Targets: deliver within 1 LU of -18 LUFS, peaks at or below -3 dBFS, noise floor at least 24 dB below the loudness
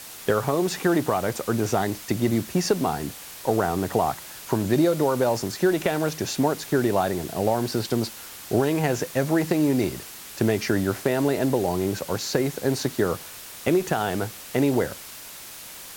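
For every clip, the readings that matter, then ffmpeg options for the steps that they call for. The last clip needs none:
noise floor -41 dBFS; noise floor target -49 dBFS; loudness -24.5 LUFS; peak -7.5 dBFS; loudness target -18.0 LUFS
-> -af "afftdn=nr=8:nf=-41"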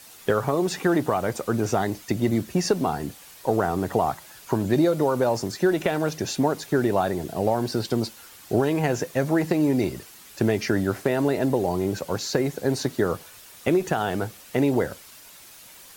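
noise floor -47 dBFS; noise floor target -49 dBFS
-> -af "afftdn=nr=6:nf=-47"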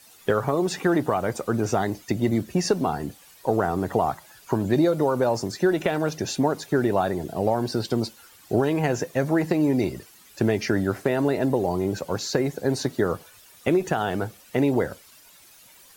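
noise floor -52 dBFS; loudness -24.5 LUFS; peak -8.0 dBFS; loudness target -18.0 LUFS
-> -af "volume=6.5dB,alimiter=limit=-3dB:level=0:latency=1"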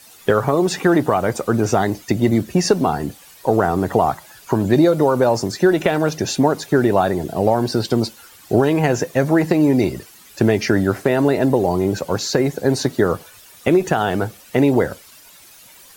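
loudness -18.5 LUFS; peak -3.0 dBFS; noise floor -45 dBFS

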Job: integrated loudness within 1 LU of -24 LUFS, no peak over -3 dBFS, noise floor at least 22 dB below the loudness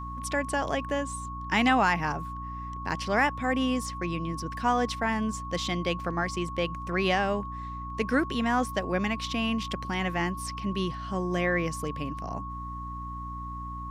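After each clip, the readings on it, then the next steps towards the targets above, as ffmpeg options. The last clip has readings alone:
hum 60 Hz; harmonics up to 300 Hz; hum level -37 dBFS; steady tone 1100 Hz; tone level -37 dBFS; loudness -29.5 LUFS; peak -12.0 dBFS; loudness target -24.0 LUFS
-> -af "bandreject=f=60:t=h:w=4,bandreject=f=120:t=h:w=4,bandreject=f=180:t=h:w=4,bandreject=f=240:t=h:w=4,bandreject=f=300:t=h:w=4"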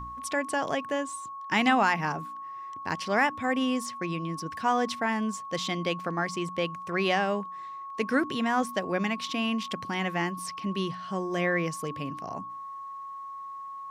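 hum none; steady tone 1100 Hz; tone level -37 dBFS
-> -af "bandreject=f=1.1k:w=30"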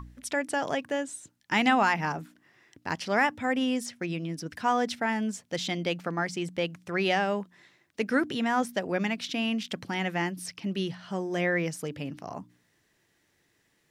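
steady tone none; loudness -29.5 LUFS; peak -12.0 dBFS; loudness target -24.0 LUFS
-> -af "volume=5.5dB"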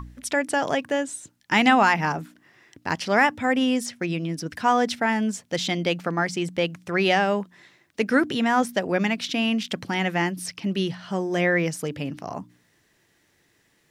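loudness -24.0 LUFS; peak -6.5 dBFS; noise floor -65 dBFS

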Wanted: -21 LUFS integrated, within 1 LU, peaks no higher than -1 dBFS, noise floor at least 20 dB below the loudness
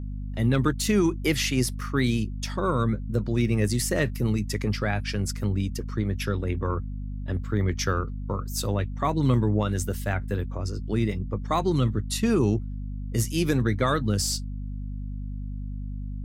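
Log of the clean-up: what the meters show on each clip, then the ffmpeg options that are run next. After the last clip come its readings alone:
hum 50 Hz; harmonics up to 250 Hz; hum level -30 dBFS; loudness -27.0 LUFS; peak -10.0 dBFS; loudness target -21.0 LUFS
-> -af "bandreject=f=50:t=h:w=4,bandreject=f=100:t=h:w=4,bandreject=f=150:t=h:w=4,bandreject=f=200:t=h:w=4,bandreject=f=250:t=h:w=4"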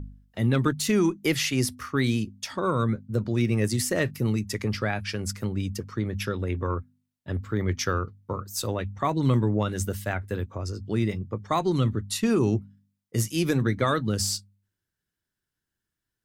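hum none; loudness -27.0 LUFS; peak -10.5 dBFS; loudness target -21.0 LUFS
-> -af "volume=6dB"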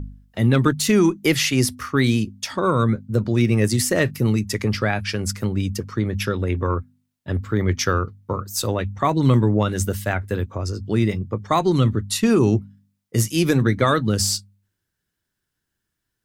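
loudness -21.0 LUFS; peak -4.5 dBFS; noise floor -80 dBFS

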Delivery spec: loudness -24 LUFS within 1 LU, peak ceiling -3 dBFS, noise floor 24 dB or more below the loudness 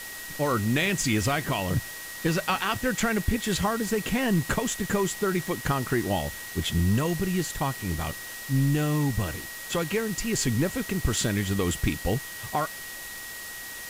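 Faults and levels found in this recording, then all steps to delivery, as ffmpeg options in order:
steady tone 1900 Hz; tone level -40 dBFS; noise floor -39 dBFS; noise floor target -52 dBFS; loudness -27.5 LUFS; peak -11.5 dBFS; loudness target -24.0 LUFS
-> -af "bandreject=f=1.9k:w=30"
-af "afftdn=nr=13:nf=-39"
-af "volume=3.5dB"

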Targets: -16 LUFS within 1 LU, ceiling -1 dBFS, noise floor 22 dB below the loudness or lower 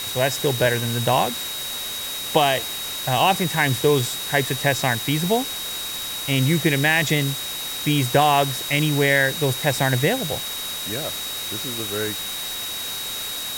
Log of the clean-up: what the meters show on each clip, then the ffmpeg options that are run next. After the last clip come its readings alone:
steady tone 3800 Hz; tone level -30 dBFS; noise floor -30 dBFS; noise floor target -44 dBFS; loudness -21.5 LUFS; peak -3.0 dBFS; loudness target -16.0 LUFS
-> -af "bandreject=f=3.8k:w=30"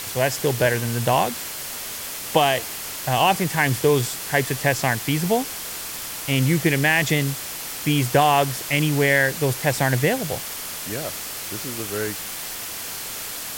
steady tone none; noise floor -32 dBFS; noise floor target -44 dBFS
-> -af "afftdn=nr=12:nf=-32"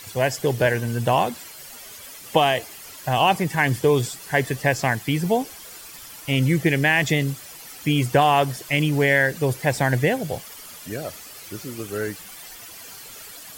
noise floor -41 dBFS; noise floor target -44 dBFS
-> -af "afftdn=nr=6:nf=-41"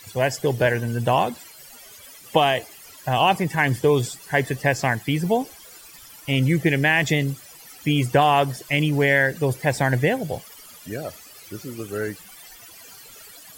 noise floor -45 dBFS; loudness -21.5 LUFS; peak -4.0 dBFS; loudness target -16.0 LUFS
-> -af "volume=5.5dB,alimiter=limit=-1dB:level=0:latency=1"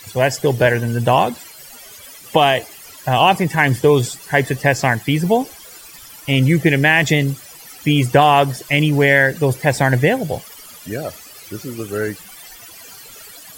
loudness -16.0 LUFS; peak -1.0 dBFS; noise floor -40 dBFS

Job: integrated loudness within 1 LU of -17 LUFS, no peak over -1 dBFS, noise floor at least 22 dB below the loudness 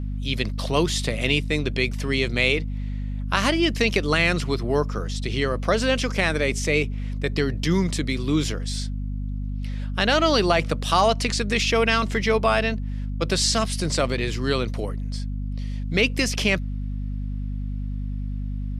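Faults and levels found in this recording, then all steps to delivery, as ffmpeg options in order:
hum 50 Hz; harmonics up to 250 Hz; hum level -25 dBFS; loudness -23.5 LUFS; peak -5.0 dBFS; loudness target -17.0 LUFS
-> -af "bandreject=f=50:t=h:w=4,bandreject=f=100:t=h:w=4,bandreject=f=150:t=h:w=4,bandreject=f=200:t=h:w=4,bandreject=f=250:t=h:w=4"
-af "volume=6.5dB,alimiter=limit=-1dB:level=0:latency=1"

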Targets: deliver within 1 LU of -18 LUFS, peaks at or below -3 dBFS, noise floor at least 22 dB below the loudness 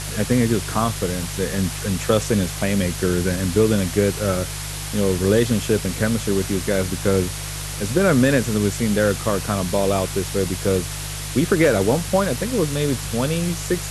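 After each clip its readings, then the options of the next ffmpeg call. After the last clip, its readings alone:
hum 50 Hz; harmonics up to 150 Hz; hum level -30 dBFS; noise floor -29 dBFS; noise floor target -43 dBFS; loudness -21.0 LUFS; peak -3.5 dBFS; loudness target -18.0 LUFS
-> -af "bandreject=f=50:t=h:w=4,bandreject=f=100:t=h:w=4,bandreject=f=150:t=h:w=4"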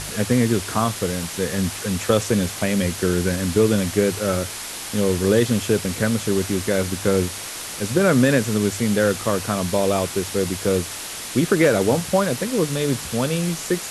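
hum none; noise floor -32 dBFS; noise floor target -43 dBFS
-> -af "afftdn=nr=11:nf=-32"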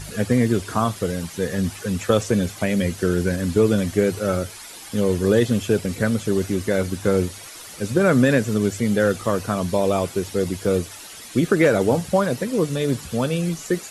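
noise floor -39 dBFS; noise floor target -44 dBFS
-> -af "afftdn=nr=6:nf=-39"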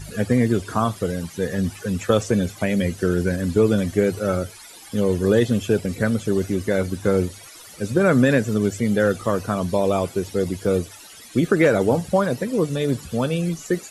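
noise floor -43 dBFS; noise floor target -44 dBFS
-> -af "afftdn=nr=6:nf=-43"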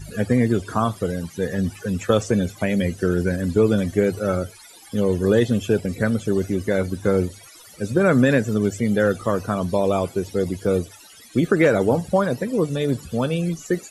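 noise floor -46 dBFS; loudness -21.5 LUFS; peak -3.5 dBFS; loudness target -18.0 LUFS
-> -af "volume=3.5dB,alimiter=limit=-3dB:level=0:latency=1"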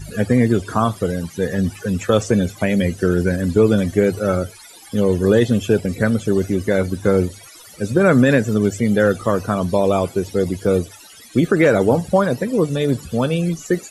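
loudness -18.5 LUFS; peak -3.0 dBFS; noise floor -42 dBFS

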